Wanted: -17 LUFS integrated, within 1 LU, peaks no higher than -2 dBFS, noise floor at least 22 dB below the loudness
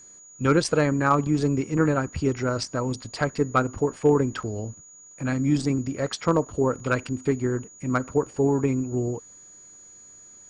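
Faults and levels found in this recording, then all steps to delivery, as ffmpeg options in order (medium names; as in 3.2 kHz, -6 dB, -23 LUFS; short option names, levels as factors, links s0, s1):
steady tone 6.8 kHz; tone level -46 dBFS; loudness -25.0 LUFS; peak level -8.5 dBFS; loudness target -17.0 LUFS
-> -af "bandreject=f=6800:w=30"
-af "volume=2.51,alimiter=limit=0.794:level=0:latency=1"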